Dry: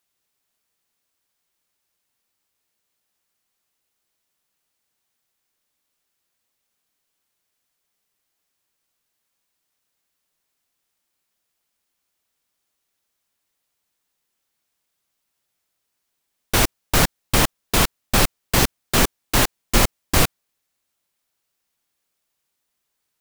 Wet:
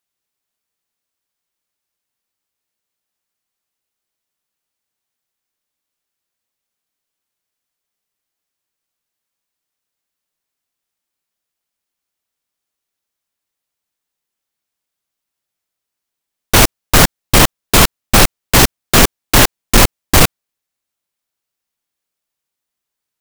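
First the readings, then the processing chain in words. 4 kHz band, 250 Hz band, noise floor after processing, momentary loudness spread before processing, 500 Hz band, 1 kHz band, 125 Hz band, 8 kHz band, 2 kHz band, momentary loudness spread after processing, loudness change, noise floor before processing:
+8.5 dB, +8.0 dB, -81 dBFS, 0 LU, +8.5 dB, +8.5 dB, +8.5 dB, +9.0 dB, +8.5 dB, 1 LU, +8.5 dB, -77 dBFS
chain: sample leveller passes 3; gain +1.5 dB

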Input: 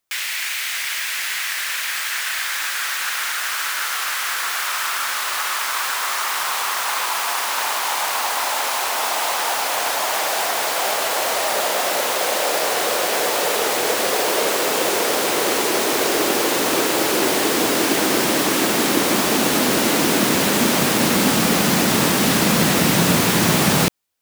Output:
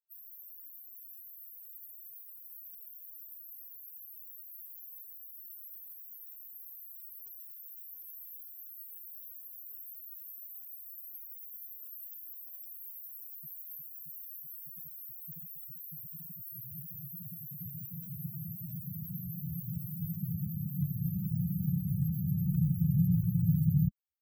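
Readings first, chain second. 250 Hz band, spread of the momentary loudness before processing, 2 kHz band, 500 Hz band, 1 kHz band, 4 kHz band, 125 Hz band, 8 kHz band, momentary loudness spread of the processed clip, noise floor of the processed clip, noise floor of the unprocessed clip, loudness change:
-15.5 dB, 6 LU, under -40 dB, under -40 dB, under -40 dB, under -40 dB, -4.5 dB, under -40 dB, 16 LU, -51 dBFS, -25 dBFS, -19.5 dB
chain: brick-wall FIR band-stop 180–12000 Hz; loudest bins only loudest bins 8; gain -2 dB

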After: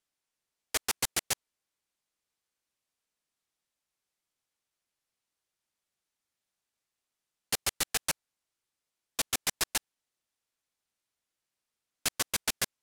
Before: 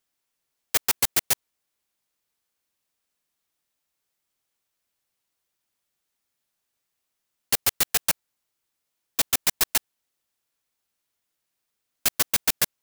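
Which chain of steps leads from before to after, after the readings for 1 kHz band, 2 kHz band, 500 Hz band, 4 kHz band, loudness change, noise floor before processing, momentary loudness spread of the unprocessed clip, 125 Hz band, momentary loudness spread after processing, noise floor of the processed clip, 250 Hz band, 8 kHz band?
-5.0 dB, -5.0 dB, -5.0 dB, -5.0 dB, -8.5 dB, -81 dBFS, 5 LU, -5.0 dB, 5 LU, under -85 dBFS, -5.0 dB, -6.0 dB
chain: LPF 11000 Hz 12 dB/oct; gain -5 dB

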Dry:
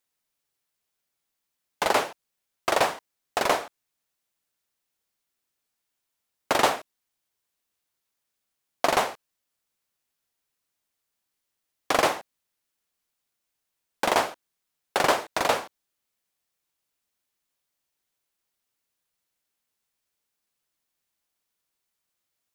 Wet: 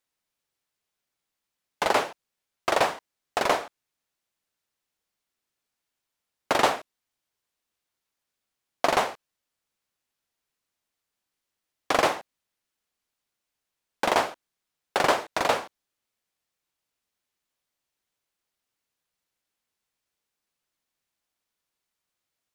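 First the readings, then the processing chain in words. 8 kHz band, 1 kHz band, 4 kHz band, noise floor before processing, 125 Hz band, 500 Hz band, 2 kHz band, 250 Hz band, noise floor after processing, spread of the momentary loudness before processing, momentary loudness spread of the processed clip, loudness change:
-3.0 dB, 0.0 dB, -1.0 dB, -82 dBFS, 0.0 dB, 0.0 dB, -0.5 dB, 0.0 dB, -85 dBFS, 11 LU, 11 LU, 0.0 dB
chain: high shelf 8500 Hz -7 dB

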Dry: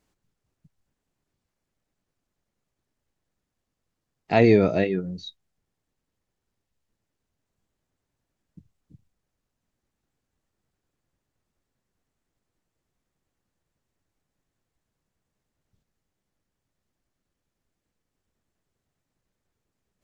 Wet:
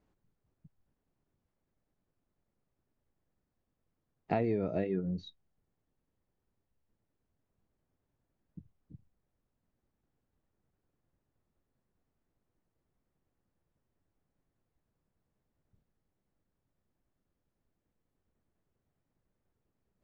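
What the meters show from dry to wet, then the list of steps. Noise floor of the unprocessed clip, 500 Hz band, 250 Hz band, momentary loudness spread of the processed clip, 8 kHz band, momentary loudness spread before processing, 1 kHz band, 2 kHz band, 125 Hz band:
-83 dBFS, -13.0 dB, -11.5 dB, 7 LU, n/a, 18 LU, -10.5 dB, -17.5 dB, -10.5 dB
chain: LPF 1000 Hz 6 dB/oct; compressor 16:1, threshold -27 dBFS, peak gain reduction 15 dB

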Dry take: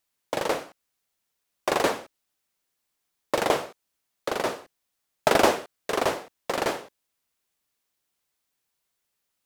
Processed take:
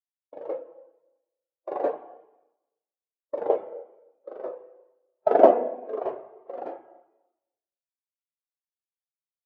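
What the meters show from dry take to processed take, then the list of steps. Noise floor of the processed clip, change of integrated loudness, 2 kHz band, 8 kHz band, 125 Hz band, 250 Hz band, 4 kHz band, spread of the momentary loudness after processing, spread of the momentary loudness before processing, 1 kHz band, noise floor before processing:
under -85 dBFS, +1.5 dB, -16.5 dB, under -35 dB, under -15 dB, -2.0 dB, under -25 dB, 25 LU, 14 LU, -1.5 dB, -80 dBFS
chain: spring tank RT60 2.4 s, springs 32/36/43 ms, chirp 50 ms, DRR 2 dB; gate with hold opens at -48 dBFS; spectral expander 2.5:1; gain +2 dB

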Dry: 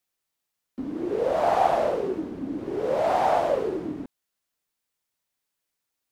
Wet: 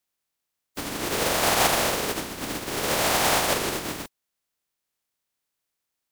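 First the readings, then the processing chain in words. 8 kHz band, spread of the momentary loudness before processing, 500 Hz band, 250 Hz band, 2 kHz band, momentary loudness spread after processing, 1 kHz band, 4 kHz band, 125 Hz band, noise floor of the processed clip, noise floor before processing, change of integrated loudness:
n/a, 14 LU, -4.5 dB, -1.5 dB, +11.5 dB, 14 LU, -2.0 dB, +18.0 dB, +6.0 dB, -83 dBFS, -83 dBFS, +1.5 dB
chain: spectral contrast lowered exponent 0.34; record warp 45 rpm, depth 160 cents

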